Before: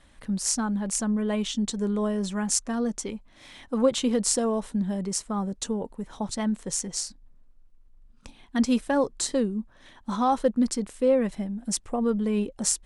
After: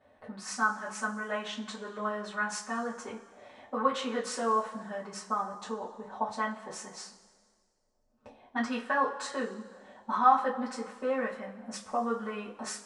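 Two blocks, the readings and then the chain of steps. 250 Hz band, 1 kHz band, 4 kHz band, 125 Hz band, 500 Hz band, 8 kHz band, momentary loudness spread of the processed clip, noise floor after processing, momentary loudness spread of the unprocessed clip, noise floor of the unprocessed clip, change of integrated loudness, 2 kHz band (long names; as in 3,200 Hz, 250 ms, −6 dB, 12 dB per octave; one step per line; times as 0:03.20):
−12.5 dB, +3.5 dB, −8.0 dB, below −15 dB, −7.5 dB, −14.5 dB, 13 LU, −71 dBFS, 9 LU, −55 dBFS, −5.5 dB, +6.0 dB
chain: envelope filter 560–1,300 Hz, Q 2.3, up, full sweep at −25 dBFS
coupled-rooms reverb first 0.22 s, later 1.7 s, from −20 dB, DRR −8.5 dB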